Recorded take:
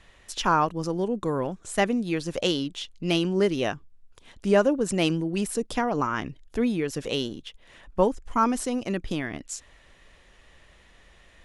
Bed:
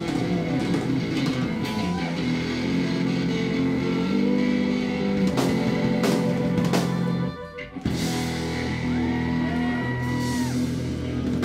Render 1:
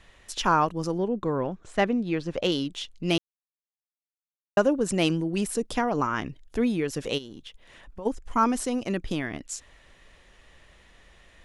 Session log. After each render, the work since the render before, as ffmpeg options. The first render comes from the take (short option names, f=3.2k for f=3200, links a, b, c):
-filter_complex "[0:a]asettb=1/sr,asplit=3[a][b][c];[a]atrim=end=0.984[d];[b]atrim=start=0.98:end=2.52,asetpts=PTS-STARTPTS,afade=t=in:d=0.004:c=qsin,afade=t=out:st=1.536:d=0.004:c=qsin,adynamicsmooth=sensitivity=0.5:basefreq=4k[e];[c]atrim=start=2.516[f];[d][e]acrossfade=d=0.004:c1=hsin:c2=qsin[g];[g][f]acrossfade=d=0.004:c1=qsin:c2=hsin,asplit=3[h][i][j];[h]afade=t=out:st=7.17:d=0.02[k];[i]acompressor=threshold=-38dB:ratio=4:attack=3.2:release=140:knee=1:detection=peak,afade=t=in:st=7.17:d=0.02,afade=t=out:st=8.05:d=0.02[l];[j]afade=t=in:st=8.05:d=0.02[m];[k][l][m]amix=inputs=3:normalize=0,asplit=3[n][o][p];[n]atrim=end=3.18,asetpts=PTS-STARTPTS,afade=t=out:st=3.176:d=0.004:c=hsin[q];[o]atrim=start=3.18:end=4.57,asetpts=PTS-STARTPTS,volume=0[r];[p]atrim=start=4.57,asetpts=PTS-STARTPTS,afade=t=in:d=0.004:c=hsin[s];[q][r][s]concat=n=3:v=0:a=1"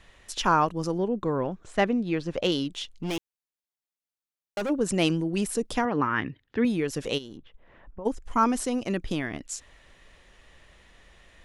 -filter_complex "[0:a]asplit=3[a][b][c];[a]afade=t=out:st=2.89:d=0.02[d];[b]asoftclip=type=hard:threshold=-27dB,afade=t=in:st=2.89:d=0.02,afade=t=out:st=4.69:d=0.02[e];[c]afade=t=in:st=4.69:d=0.02[f];[d][e][f]amix=inputs=3:normalize=0,asettb=1/sr,asplit=3[g][h][i];[g]atrim=end=5.854[j];[h]atrim=start=5.85:end=6.65,asetpts=PTS-STARTPTS,afade=t=in:d=0.004:c=qsin,afade=t=out:st=0.796:d=0.004:c=qsin,highpass=100,equalizer=f=100:t=q:w=4:g=7,equalizer=f=280:t=q:w=4:g=3,equalizer=f=670:t=q:w=4:g=-7,equalizer=f=1.8k:t=q:w=4:g=8,lowpass=f=3.8k:w=0.5412,lowpass=f=3.8k:w=1.3066[k];[i]atrim=start=6.646[l];[j][k]acrossfade=d=0.004:c1=hsin:c2=qsin[m];[m][l]acrossfade=d=0.004:c1=qsin:c2=hsin,asplit=3[n][o][p];[n]afade=t=out:st=7.36:d=0.02[q];[o]lowpass=1.4k,afade=t=in:st=7.36:d=0.02,afade=t=out:st=8.04:d=0.02[r];[p]afade=t=in:st=8.04:d=0.02[s];[q][r][s]amix=inputs=3:normalize=0"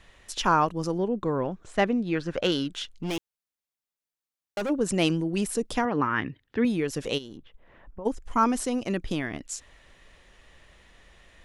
-filter_complex "[0:a]asettb=1/sr,asplit=3[a][b][c];[a]atrim=end=2.154[d];[b]atrim=start=2.15:end=2.91,asetpts=PTS-STARTPTS,afade=t=in:d=0.004:c=qsin,afade=t=out:st=0.756:d=0.004:c=qsin,equalizer=f=1.5k:w=3.1:g=11.5[e];[c]atrim=start=2.906[f];[d][e]acrossfade=d=0.004:c1=hsin:c2=qsin[g];[g][f]acrossfade=d=0.004:c1=qsin:c2=hsin"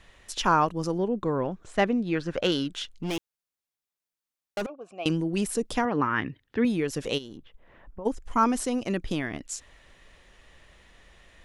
-filter_complex "[0:a]asettb=1/sr,asplit=3[a][b][c];[a]atrim=end=4.664[d];[b]atrim=start=4.66:end=5.06,asetpts=PTS-STARTPTS,afade=t=in:d=0.004:c=qsin,afade=t=out:st=0.396:d=0.004:c=qsin,asplit=3[e][f][g];[e]bandpass=f=730:t=q:w=8,volume=0dB[h];[f]bandpass=f=1.09k:t=q:w=8,volume=-6dB[i];[g]bandpass=f=2.44k:t=q:w=8,volume=-9dB[j];[h][i][j]amix=inputs=3:normalize=0[k];[c]atrim=start=5.056[l];[d][k]acrossfade=d=0.004:c1=hsin:c2=qsin[m];[m][l]acrossfade=d=0.004:c1=qsin:c2=hsin"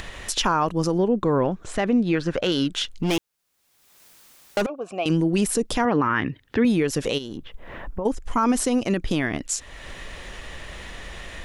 -filter_complex "[0:a]asplit=2[a][b];[b]acompressor=mode=upward:threshold=-26dB:ratio=2.5,volume=2dB[c];[a][c]amix=inputs=2:normalize=0,alimiter=limit=-12dB:level=0:latency=1:release=50"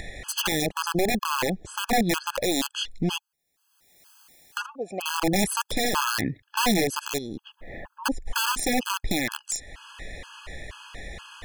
-af "aeval=exprs='(mod(5.62*val(0)+1,2)-1)/5.62':c=same,afftfilt=real='re*gt(sin(2*PI*2.1*pts/sr)*(1-2*mod(floor(b*sr/1024/840),2)),0)':imag='im*gt(sin(2*PI*2.1*pts/sr)*(1-2*mod(floor(b*sr/1024/840),2)),0)':win_size=1024:overlap=0.75"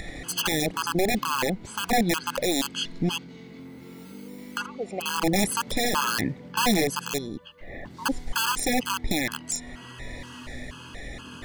-filter_complex "[1:a]volume=-20dB[a];[0:a][a]amix=inputs=2:normalize=0"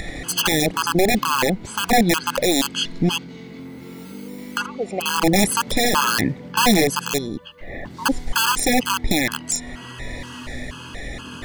-af "volume=6.5dB"